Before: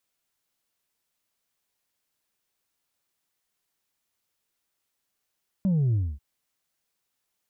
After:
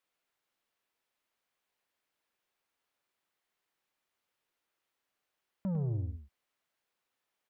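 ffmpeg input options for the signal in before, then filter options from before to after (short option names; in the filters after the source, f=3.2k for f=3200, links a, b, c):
-f lavfi -i "aevalsrc='0.0944*clip((0.54-t)/0.25,0,1)*tanh(1.26*sin(2*PI*200*0.54/log(65/200)*(exp(log(65/200)*t/0.54)-1)))/tanh(1.26)':d=0.54:s=44100"
-filter_complex "[0:a]bass=f=250:g=-8,treble=f=4k:g=-11,asoftclip=type=tanh:threshold=-29dB,asplit=2[a][b];[b]aecho=0:1:102:0.376[c];[a][c]amix=inputs=2:normalize=0"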